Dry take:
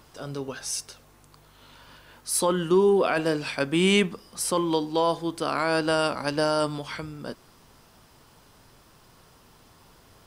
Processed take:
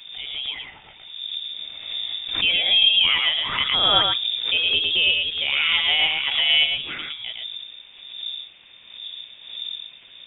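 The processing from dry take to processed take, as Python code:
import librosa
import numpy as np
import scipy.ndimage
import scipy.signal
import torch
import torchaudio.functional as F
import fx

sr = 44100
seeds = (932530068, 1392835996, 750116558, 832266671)

p1 = fx.dmg_wind(x, sr, seeds[0], corner_hz=110.0, level_db=-39.0)
p2 = fx.peak_eq(p1, sr, hz=1100.0, db=4.0, octaves=2.0)
p3 = p2 + fx.echo_single(p2, sr, ms=111, db=-3.5, dry=0)
p4 = fx.freq_invert(p3, sr, carrier_hz=3600)
y = fx.pre_swell(p4, sr, db_per_s=70.0)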